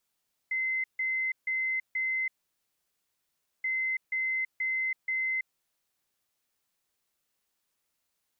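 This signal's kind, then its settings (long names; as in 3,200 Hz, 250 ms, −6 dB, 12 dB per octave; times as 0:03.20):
beeps in groups sine 2,060 Hz, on 0.33 s, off 0.15 s, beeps 4, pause 1.36 s, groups 2, −27 dBFS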